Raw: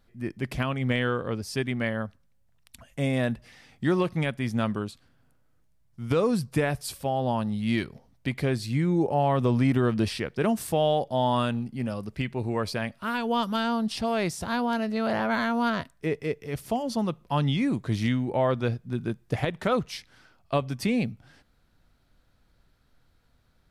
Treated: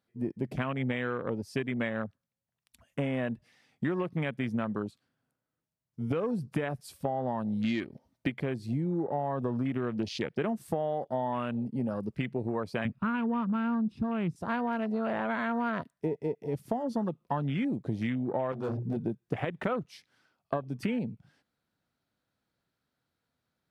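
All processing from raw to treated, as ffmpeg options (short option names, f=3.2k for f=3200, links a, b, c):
-filter_complex "[0:a]asettb=1/sr,asplit=3[a][b][c];[a]atrim=end=7.644[d];[b]atrim=start=7.64:end=8.3,asetpts=PTS-STARTPTS,afade=t=in:d=0.004:c=qsin,afade=t=out:st=0.656:d=0.004:c=qsin,aecho=1:1:3.3:0.38,atrim=end_sample=29106,acontrast=22[e];[c]atrim=start=8.296[f];[d][e]acrossfade=d=0.004:c1=hsin:c2=qsin[g];[g][f]acrossfade=d=0.004:c1=qsin:c2=hsin,asettb=1/sr,asplit=3[h][i][j];[h]atrim=end=12.854[k];[i]atrim=start=12.85:end=14.36,asetpts=PTS-STARTPTS,afade=t=in:d=0.004:c=qsin,afade=t=out:st=1.506:d=0.004:c=qsin,bass=f=250:g=12,treble=f=4k:g=-11,aecho=1:1:0.8:0.4,atrim=end_sample=66591[l];[j]atrim=start=14.356[m];[k][l]acrossfade=d=0.004:c1=hsin:c2=qsin[n];[n][m]acrossfade=d=0.004:c1=qsin:c2=hsin,asettb=1/sr,asplit=3[o][p][q];[o]atrim=end=18.524[r];[p]atrim=start=18.52:end=18.97,asetpts=PTS-STARTPTS,afade=t=in:d=0.004:c=qsin,afade=t=out:st=0.446:d=0.004:c=qsin,bandreject=f=60:t=h:w=6,bandreject=f=120:t=h:w=6,bandreject=f=180:t=h:w=6,bandreject=f=240:t=h:w=6,bandreject=f=300:t=h:w=6,bandreject=f=360:t=h:w=6,bandreject=f=420:t=h:w=6,asoftclip=type=hard:threshold=-33.5dB,acontrast=37[s];[q]atrim=start=18.966[t];[r][s]acrossfade=d=0.004:c1=hsin:c2=qsin[u];[u][t]acrossfade=d=0.004:c1=qsin:c2=hsin,afwtdn=0.0178,highpass=140,acompressor=threshold=-32dB:ratio=10,volume=4.5dB"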